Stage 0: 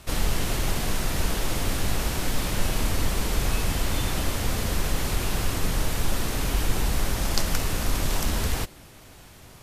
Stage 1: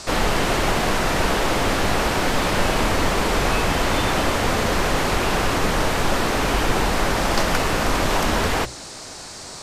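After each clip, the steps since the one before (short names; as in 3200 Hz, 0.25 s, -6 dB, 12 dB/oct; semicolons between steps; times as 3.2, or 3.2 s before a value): band noise 4000–9100 Hz -42 dBFS; overdrive pedal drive 17 dB, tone 1100 Hz, clips at -2.5 dBFS; notches 60/120 Hz; gain +5.5 dB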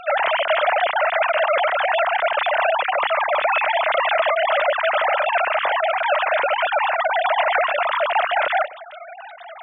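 sine-wave speech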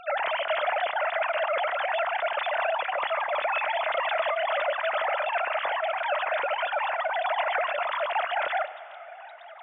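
reverb RT60 3.9 s, pre-delay 3 ms, DRR 15 dB; gain -8 dB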